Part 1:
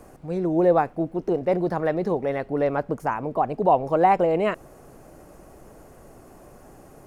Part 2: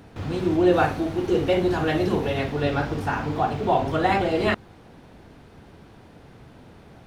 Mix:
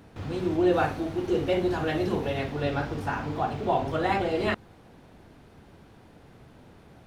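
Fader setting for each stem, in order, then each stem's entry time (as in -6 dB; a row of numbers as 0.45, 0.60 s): -18.0, -4.5 dB; 0.00, 0.00 s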